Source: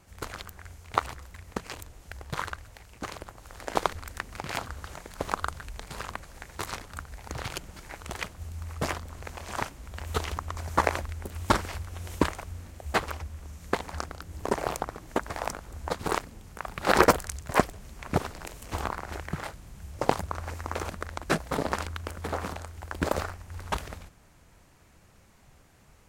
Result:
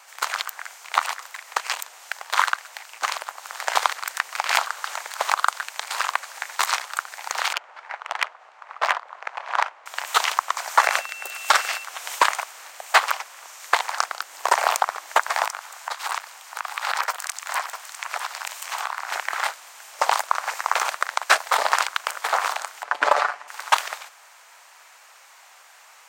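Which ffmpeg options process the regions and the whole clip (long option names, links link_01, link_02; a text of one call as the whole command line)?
ffmpeg -i in.wav -filter_complex "[0:a]asettb=1/sr,asplit=3[link_01][link_02][link_03];[link_01]atrim=end=7.534[link_04];[link_02]atrim=start=7.53:end=9.86,asetpts=PTS-STARTPTS,afade=type=in:duration=0.004:curve=qsin,afade=type=out:start_time=2.326:duration=0.004:curve=qsin,highpass=390,adynamicsmooth=sensitivity=2:basefreq=1500[link_05];[link_03]atrim=start=9.856[link_06];[link_04][link_05]acrossfade=duration=0.004:curve1=hsin:curve2=qsin[link_07];[link_07][link_06]acrossfade=duration=0.004:curve1=qsin:curve2=hsin,asettb=1/sr,asplit=3[link_08][link_09][link_10];[link_08]atrim=end=10.794[link_11];[link_09]atrim=start=10.79:end=11.84,asetpts=PTS-STARTPTS,afade=type=in:duration=0.004:curve=qsin,afade=type=out:start_time=1.046:duration=0.004:curve=qsin,equalizer=frequency=960:width_type=o:width=0.29:gain=-8.5,aeval=exprs='val(0)+0.00316*sin(2*PI*2700*n/s)':channel_layout=same[link_12];[link_10]atrim=start=11.836[link_13];[link_11][link_12]acrossfade=duration=0.004:curve1=hsin:curve2=qsin[link_14];[link_14][link_13]acrossfade=duration=0.004:curve1=qsin:curve2=hsin,asettb=1/sr,asplit=3[link_15][link_16][link_17];[link_15]atrim=end=15.454[link_18];[link_16]atrim=start=15.45:end=19.11,asetpts=PTS-STARTPTS,afade=type=in:duration=0.004:curve=qsin,afade=type=out:start_time=3.656:duration=0.004:curve=qsin,highpass=640,acompressor=threshold=-39dB:ratio=3:attack=3.2:release=140:knee=1:detection=peak,aecho=1:1:651:0.299,atrim=end_sample=161406[link_19];[link_17]atrim=start=19.106[link_20];[link_18][link_19]acrossfade=duration=0.004:curve1=hsin:curve2=qsin[link_21];[link_21][link_20]acrossfade=duration=0.004:curve1=qsin:curve2=hsin,asettb=1/sr,asplit=3[link_22][link_23][link_24];[link_22]atrim=end=22.834[link_25];[link_23]atrim=start=22.83:end=23.48,asetpts=PTS-STARTPTS,afade=type=in:duration=0.004:curve=qsin,afade=type=out:start_time=0.646:duration=0.004:curve=qsin,aemphasis=mode=reproduction:type=riaa,aecho=1:1:6.9:0.59,atrim=end_sample=28665[link_26];[link_24]atrim=start=23.476[link_27];[link_25][link_26]acrossfade=duration=0.004:curve1=hsin:curve2=qsin[link_28];[link_28][link_27]acrossfade=duration=0.004:curve1=qsin:curve2=hsin,highpass=frequency=780:width=0.5412,highpass=frequency=780:width=1.3066,equalizer=frequency=11000:width=6.5:gain=-13.5,alimiter=level_in=15.5dB:limit=-1dB:release=50:level=0:latency=1,volume=-1dB" out.wav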